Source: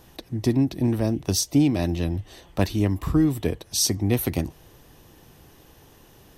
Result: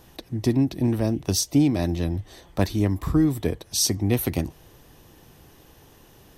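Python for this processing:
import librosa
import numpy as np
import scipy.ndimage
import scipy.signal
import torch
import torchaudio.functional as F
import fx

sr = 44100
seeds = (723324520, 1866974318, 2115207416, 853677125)

y = fx.peak_eq(x, sr, hz=2800.0, db=-6.5, octaves=0.23, at=(1.6, 3.62))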